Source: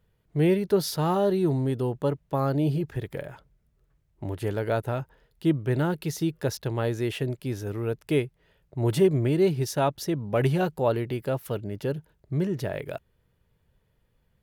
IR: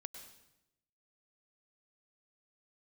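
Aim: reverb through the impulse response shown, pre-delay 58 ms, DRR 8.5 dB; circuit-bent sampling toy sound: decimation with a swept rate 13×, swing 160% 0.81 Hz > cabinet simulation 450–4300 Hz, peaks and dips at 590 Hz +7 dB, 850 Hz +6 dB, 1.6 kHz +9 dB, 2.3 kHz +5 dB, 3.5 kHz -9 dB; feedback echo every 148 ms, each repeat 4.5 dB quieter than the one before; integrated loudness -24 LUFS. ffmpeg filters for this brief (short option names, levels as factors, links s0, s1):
-filter_complex "[0:a]aecho=1:1:148|296|444|592|740|888|1036|1184|1332:0.596|0.357|0.214|0.129|0.0772|0.0463|0.0278|0.0167|0.01,asplit=2[s0][s1];[1:a]atrim=start_sample=2205,adelay=58[s2];[s1][s2]afir=irnorm=-1:irlink=0,volume=0.631[s3];[s0][s3]amix=inputs=2:normalize=0,acrusher=samples=13:mix=1:aa=0.000001:lfo=1:lforange=20.8:lforate=0.81,highpass=450,equalizer=f=590:t=q:w=4:g=7,equalizer=f=850:t=q:w=4:g=6,equalizer=f=1600:t=q:w=4:g=9,equalizer=f=2300:t=q:w=4:g=5,equalizer=f=3500:t=q:w=4:g=-9,lowpass=f=4300:w=0.5412,lowpass=f=4300:w=1.3066,volume=1.19"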